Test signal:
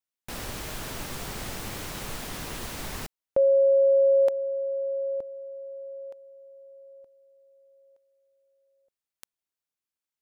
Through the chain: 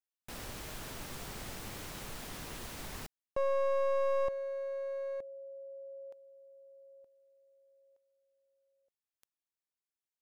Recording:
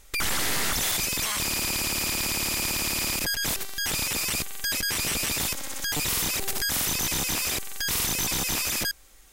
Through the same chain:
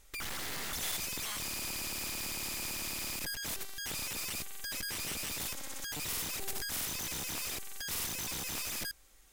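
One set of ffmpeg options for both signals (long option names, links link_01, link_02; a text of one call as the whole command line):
ffmpeg -i in.wav -af "aeval=exprs='clip(val(0),-1,0.0355)':channel_layout=same,volume=-8dB" out.wav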